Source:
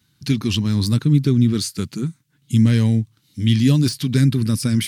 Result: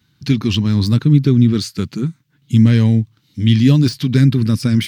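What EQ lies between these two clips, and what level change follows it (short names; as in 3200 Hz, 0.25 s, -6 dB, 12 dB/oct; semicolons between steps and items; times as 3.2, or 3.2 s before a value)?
bell 10000 Hz -12.5 dB 1.1 oct; +4.0 dB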